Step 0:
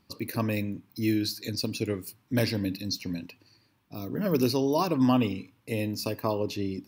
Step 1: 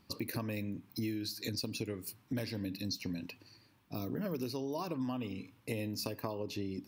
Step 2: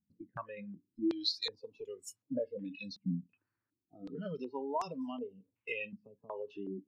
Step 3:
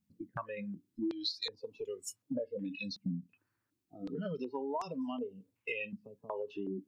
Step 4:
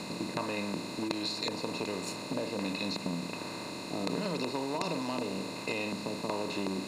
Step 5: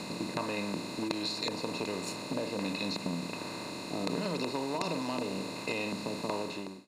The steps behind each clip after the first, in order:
downward compressor 10 to 1, threshold −35 dBFS, peak gain reduction 17 dB; level +1 dB
noise reduction from a noise print of the clip's start 25 dB; low-pass on a step sequencer 2.7 Hz 200–6,800 Hz; level −1.5 dB
downward compressor 3 to 1, threshold −40 dBFS, peak gain reduction 10 dB; level +5 dB
compressor on every frequency bin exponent 0.2; level −3.5 dB
fade-out on the ending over 0.52 s

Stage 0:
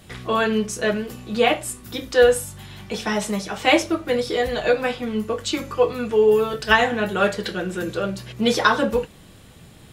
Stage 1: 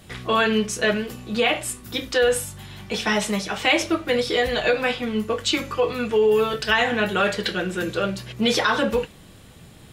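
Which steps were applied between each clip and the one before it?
brickwall limiter −12 dBFS, peak gain reduction 9.5 dB
dynamic equaliser 2,700 Hz, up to +6 dB, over −40 dBFS, Q 0.75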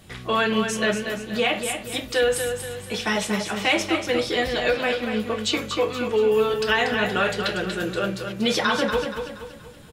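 repeating echo 237 ms, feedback 42%, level −7 dB
level −2 dB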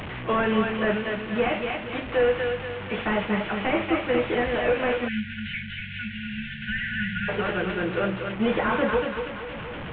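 linear delta modulator 16 kbit/s, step −28.5 dBFS
time-frequency box erased 0:05.08–0:07.28, 220–1,400 Hz

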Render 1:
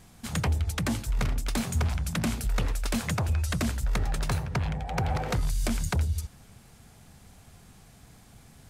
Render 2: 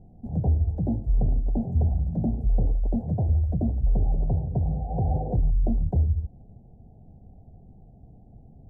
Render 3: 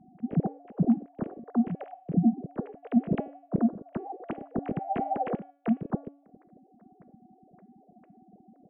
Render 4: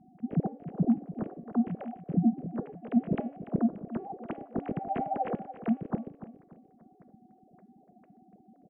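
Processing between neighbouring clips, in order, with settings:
elliptic low-pass filter 760 Hz, stop band 40 dB; spectral tilt −1.5 dB per octave
three sine waves on the formant tracks; hum removal 283.3 Hz, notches 12; level −7 dB
repeating echo 290 ms, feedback 35%, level −13.5 dB; level −2 dB

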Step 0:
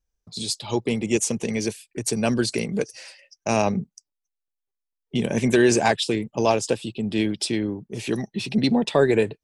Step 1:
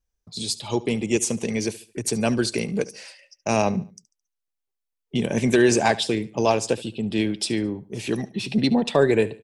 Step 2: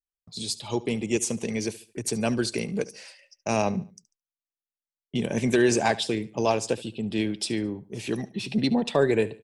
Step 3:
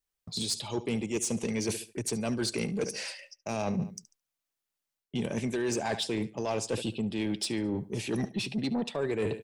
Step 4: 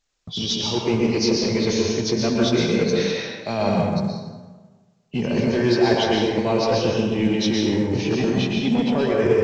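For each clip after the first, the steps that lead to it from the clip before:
repeating echo 72 ms, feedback 36%, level −19 dB
noise gate with hold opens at −44 dBFS; level −3.5 dB
reversed playback; downward compressor 10 to 1, threshold −34 dBFS, peak gain reduction 18 dB; reversed playback; soft clipping −30 dBFS, distortion −18 dB; level +8 dB
hearing-aid frequency compression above 2,300 Hz 1.5 to 1; dense smooth reverb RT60 1.4 s, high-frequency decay 0.55×, pre-delay 105 ms, DRR −2 dB; level +7.5 dB; mu-law 128 kbit/s 16,000 Hz

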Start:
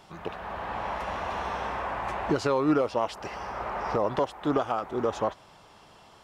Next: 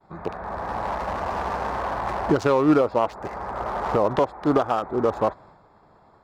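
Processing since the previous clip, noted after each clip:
adaptive Wiener filter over 15 samples
downward expander −50 dBFS
level +6 dB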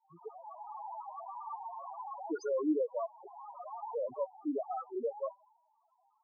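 spectral tilt +3.5 dB per octave
spectral peaks only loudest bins 2
level −5.5 dB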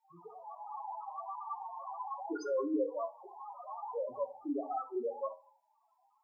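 convolution reverb RT60 0.40 s, pre-delay 3 ms, DRR 7.5 dB
level +1 dB

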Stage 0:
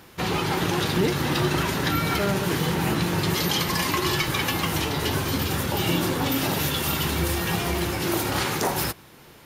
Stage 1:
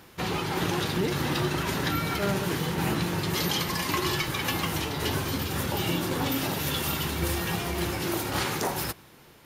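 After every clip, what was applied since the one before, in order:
shaped tremolo saw down 1.8 Hz, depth 30%
level −2.5 dB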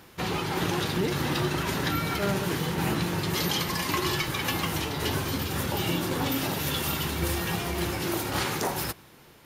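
no processing that can be heard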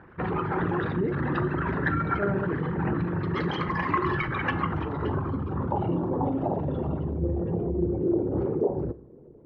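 spectral envelope exaggerated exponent 2
low-pass filter sweep 1,600 Hz → 440 Hz, 0:04.49–0:07.83
four-comb reverb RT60 0.45 s, combs from 31 ms, DRR 16 dB

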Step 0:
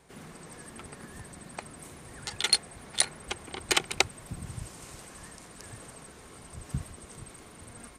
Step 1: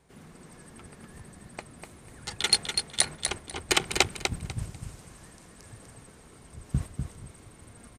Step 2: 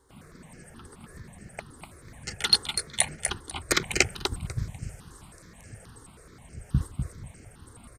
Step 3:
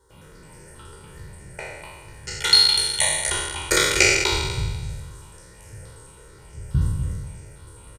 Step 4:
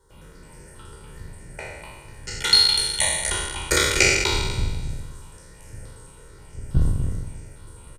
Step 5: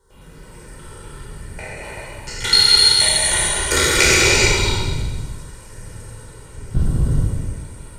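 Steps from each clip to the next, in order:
noise gate −38 dBFS, range −7 dB; low-shelf EQ 250 Hz +6 dB; on a send: repeating echo 247 ms, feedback 21%, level −6 dB; on the sum: level +1 dB
step-sequenced phaser 9.4 Hz 660–3,600 Hz; level +3.5 dB
peak hold with a decay on every bin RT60 1.36 s; comb filter 2.1 ms, depth 66%; level −1 dB
sub-octave generator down 2 octaves, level +1 dB; level −1 dB
reverb whose tail is shaped and stops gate 460 ms flat, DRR −5 dB

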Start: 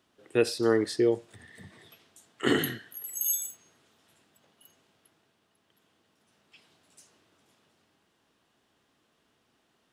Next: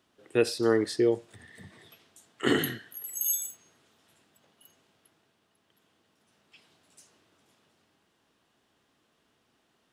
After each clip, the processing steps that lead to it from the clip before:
no processing that can be heard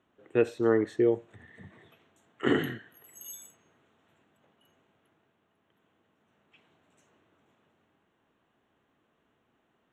moving average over 9 samples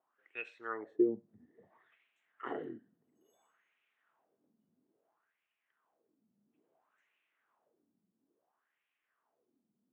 LFO wah 0.59 Hz 200–2,500 Hz, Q 4.3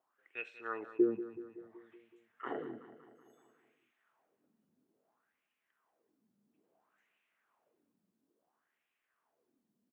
repeating echo 188 ms, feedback 59%, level −14 dB

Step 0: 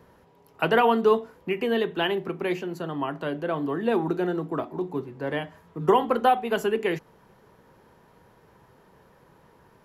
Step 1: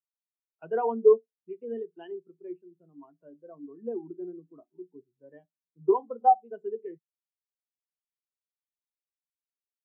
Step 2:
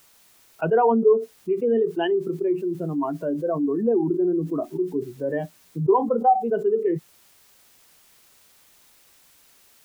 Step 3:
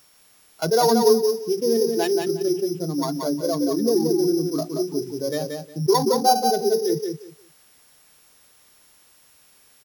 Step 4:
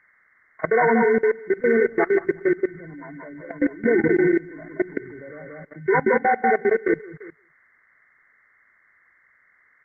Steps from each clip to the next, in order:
every bin expanded away from the loudest bin 2.5 to 1
envelope flattener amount 70%
samples sorted by size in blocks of 8 samples; on a send: repeating echo 179 ms, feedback 19%, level −5 dB
hearing-aid frequency compression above 1,000 Hz 4 to 1; output level in coarse steps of 21 dB; level +4 dB; Opus 20 kbit/s 48,000 Hz

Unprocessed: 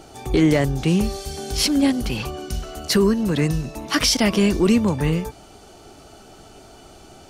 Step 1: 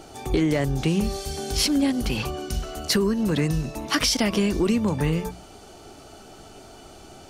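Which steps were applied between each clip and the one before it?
mains-hum notches 60/120/180 Hz
downward compressor, threshold −18 dBFS, peak gain reduction 6.5 dB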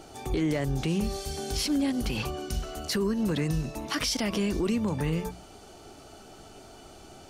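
brickwall limiter −16 dBFS, peak gain reduction 6.5 dB
level −3.5 dB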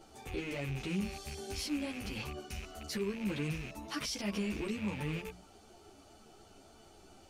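loose part that buzzes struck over −34 dBFS, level −24 dBFS
string-ensemble chorus
level −6.5 dB

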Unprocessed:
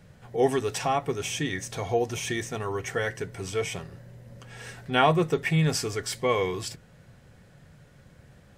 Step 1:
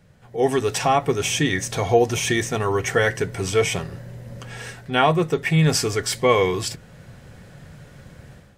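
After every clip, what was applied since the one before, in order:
automatic gain control gain up to 12 dB
level −2 dB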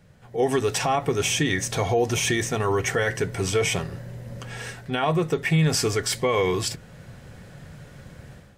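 brickwall limiter −13 dBFS, peak gain reduction 10 dB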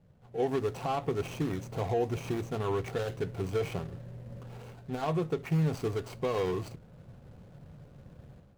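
running median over 25 samples
level −7 dB

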